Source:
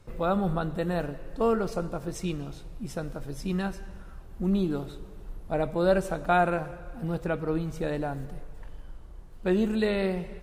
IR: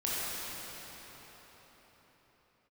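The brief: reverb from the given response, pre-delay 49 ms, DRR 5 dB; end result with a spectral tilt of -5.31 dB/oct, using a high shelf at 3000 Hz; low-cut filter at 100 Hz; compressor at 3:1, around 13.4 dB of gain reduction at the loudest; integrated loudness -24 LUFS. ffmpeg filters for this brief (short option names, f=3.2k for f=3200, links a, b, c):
-filter_complex "[0:a]highpass=100,highshelf=f=3k:g=-4,acompressor=threshold=-37dB:ratio=3,asplit=2[a][b];[1:a]atrim=start_sample=2205,adelay=49[c];[b][c]afir=irnorm=-1:irlink=0,volume=-13.5dB[d];[a][d]amix=inputs=2:normalize=0,volume=14.5dB"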